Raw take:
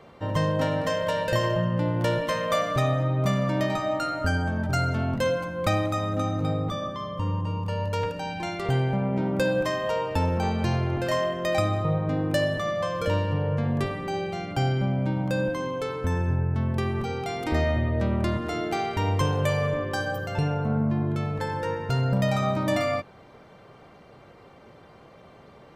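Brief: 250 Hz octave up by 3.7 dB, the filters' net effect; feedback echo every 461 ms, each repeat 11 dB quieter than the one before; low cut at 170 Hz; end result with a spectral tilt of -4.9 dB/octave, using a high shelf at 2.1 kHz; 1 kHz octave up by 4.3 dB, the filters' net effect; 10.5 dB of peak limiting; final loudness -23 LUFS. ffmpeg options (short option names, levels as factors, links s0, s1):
-af "highpass=170,equalizer=f=250:t=o:g=6.5,equalizer=f=1000:t=o:g=4,highshelf=f=2100:g=4.5,alimiter=limit=0.133:level=0:latency=1,aecho=1:1:461|922|1383:0.282|0.0789|0.0221,volume=1.5"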